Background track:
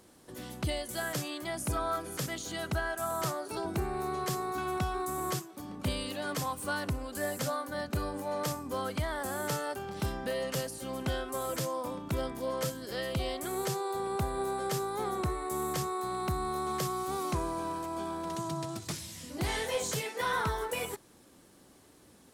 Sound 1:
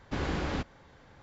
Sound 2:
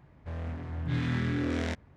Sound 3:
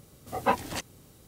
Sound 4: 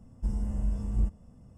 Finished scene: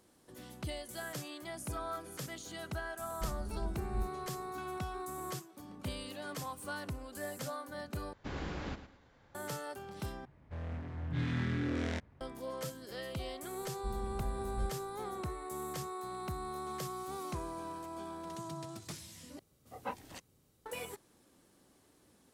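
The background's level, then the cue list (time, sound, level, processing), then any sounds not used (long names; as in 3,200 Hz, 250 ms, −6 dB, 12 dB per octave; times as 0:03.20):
background track −7.5 dB
0:02.98: mix in 4 −9.5 dB
0:08.13: overwrite with 1 −8.5 dB + repeating echo 110 ms, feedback 29%, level −11.5 dB
0:10.25: overwrite with 2 −4.5 dB
0:13.61: mix in 4 −10 dB
0:19.39: overwrite with 3 −15.5 dB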